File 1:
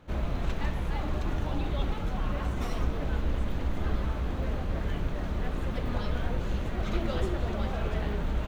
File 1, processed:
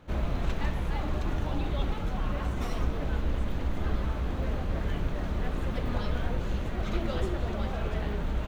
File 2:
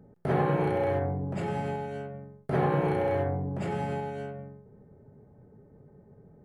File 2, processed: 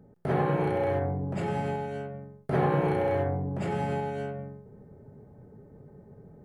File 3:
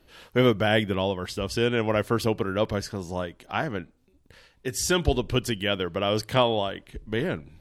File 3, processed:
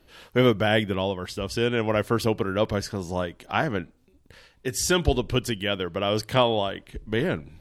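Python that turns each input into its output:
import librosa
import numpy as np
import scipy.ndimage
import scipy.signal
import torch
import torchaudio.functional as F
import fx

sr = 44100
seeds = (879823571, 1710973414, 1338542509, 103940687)

y = fx.rider(x, sr, range_db=4, speed_s=2.0)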